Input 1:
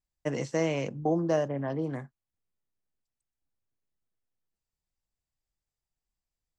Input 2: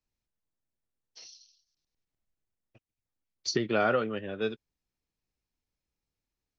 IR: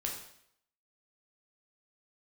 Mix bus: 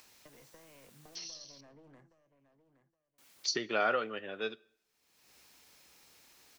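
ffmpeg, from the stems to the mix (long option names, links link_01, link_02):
-filter_complex "[0:a]acrossover=split=240|610[link_01][link_02][link_03];[link_01]acompressor=threshold=-45dB:ratio=4[link_04];[link_02]acompressor=threshold=-38dB:ratio=4[link_05];[link_03]acompressor=threshold=-35dB:ratio=4[link_06];[link_04][link_05][link_06]amix=inputs=3:normalize=0,aeval=exprs='clip(val(0),-1,0.0126)':channel_layout=same,acompressor=threshold=-41dB:ratio=10,volume=-14dB,asplit=2[link_07][link_08];[link_08]volume=-12dB[link_09];[1:a]highpass=frequency=790:poles=1,acompressor=mode=upward:threshold=-37dB:ratio=2.5,volume=-1dB,asplit=3[link_10][link_11][link_12];[link_10]atrim=end=1.61,asetpts=PTS-STARTPTS,afade=type=out:start_time=1.606:duration=0.004:curve=hsin[link_13];[link_11]atrim=start=1.61:end=3.18,asetpts=PTS-STARTPTS,volume=0[link_14];[link_12]atrim=start=3.18,asetpts=PTS-STARTPTS,afade=type=in:duration=0.004:curve=hsin[link_15];[link_13][link_14][link_15]concat=n=3:v=0:a=1,asplit=3[link_16][link_17][link_18];[link_17]volume=-20dB[link_19];[link_18]apad=whole_len=290607[link_20];[link_07][link_20]sidechaincompress=threshold=-42dB:ratio=8:attack=16:release=1100[link_21];[2:a]atrim=start_sample=2205[link_22];[link_19][link_22]afir=irnorm=-1:irlink=0[link_23];[link_09]aecho=0:1:819|1638|2457:1|0.2|0.04[link_24];[link_21][link_16][link_23][link_24]amix=inputs=4:normalize=0"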